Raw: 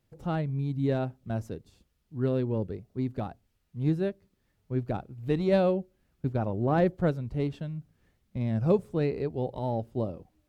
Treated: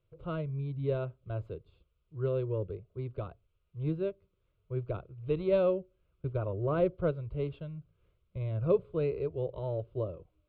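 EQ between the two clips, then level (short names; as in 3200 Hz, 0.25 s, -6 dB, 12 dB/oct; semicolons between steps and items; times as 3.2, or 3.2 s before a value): air absorption 240 m; fixed phaser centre 1200 Hz, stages 8; 0.0 dB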